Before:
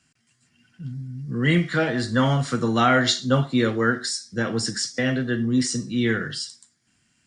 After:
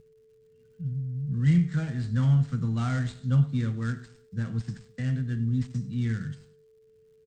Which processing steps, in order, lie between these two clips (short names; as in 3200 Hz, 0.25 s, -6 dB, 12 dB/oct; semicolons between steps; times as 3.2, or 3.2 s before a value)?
switching dead time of 0.1 ms; Chebyshev low-pass 8700 Hz, order 10; crackle 160/s -46 dBFS; whine 440 Hz -36 dBFS; EQ curve 160 Hz 0 dB, 390 Hz -24 dB, 1600 Hz -19 dB; on a send: feedback echo 0.104 s, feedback 40%, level -20 dB; on the sum: gain +3 dB